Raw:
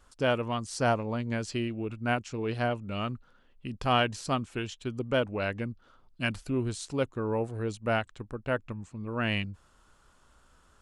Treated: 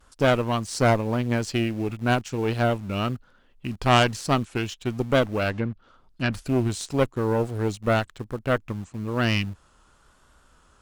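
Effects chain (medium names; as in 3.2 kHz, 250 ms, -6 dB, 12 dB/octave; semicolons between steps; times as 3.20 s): vibrato 1 Hz 44 cents; in parallel at -11.5 dB: bit crusher 7-bit; 5.50–6.33 s: on the sum: low-pass that closes with the level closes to 2.2 kHz, closed at -29 dBFS; Chebyshev shaper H 4 -13 dB, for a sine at -8.5 dBFS; trim +4 dB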